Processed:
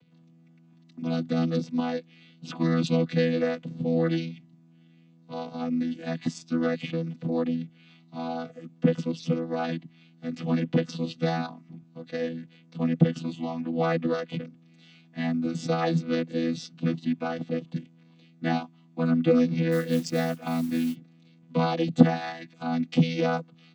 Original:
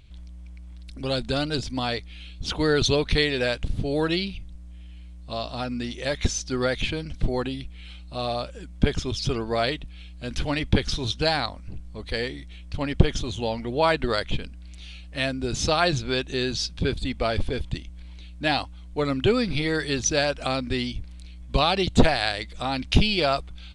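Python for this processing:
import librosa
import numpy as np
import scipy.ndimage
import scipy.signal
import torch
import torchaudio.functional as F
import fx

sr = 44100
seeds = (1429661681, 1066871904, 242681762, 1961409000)

y = fx.chord_vocoder(x, sr, chord='bare fifth', root=52)
y = fx.mod_noise(y, sr, seeds[0], snr_db=23, at=(19.71, 20.94), fade=0.02)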